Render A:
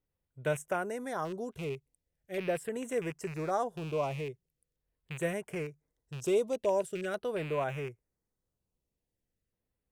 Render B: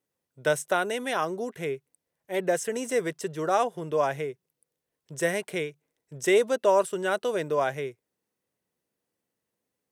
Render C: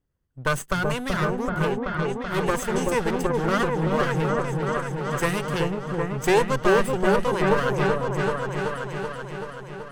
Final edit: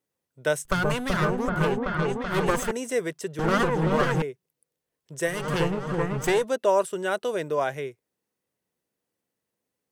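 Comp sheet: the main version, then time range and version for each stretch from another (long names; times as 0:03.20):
B
0:00.65–0:02.71: punch in from C
0:03.39–0:04.22: punch in from C
0:05.36–0:06.33: punch in from C, crossfade 0.24 s
not used: A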